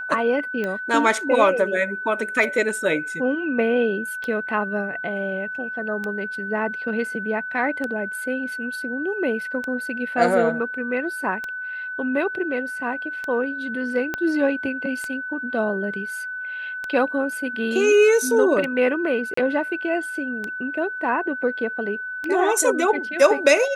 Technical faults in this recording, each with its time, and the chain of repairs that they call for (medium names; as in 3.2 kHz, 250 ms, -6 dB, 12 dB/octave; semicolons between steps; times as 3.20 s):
tick 33 1/3 rpm -15 dBFS
whine 1.5 kHz -28 dBFS
14.14 s: pop -11 dBFS
19.34–19.37 s: dropout 34 ms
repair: de-click; band-stop 1.5 kHz, Q 30; interpolate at 19.34 s, 34 ms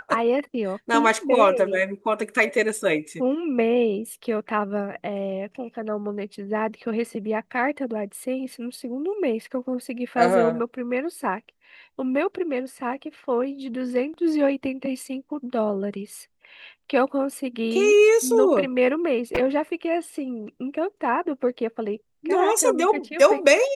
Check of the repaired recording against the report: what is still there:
14.14 s: pop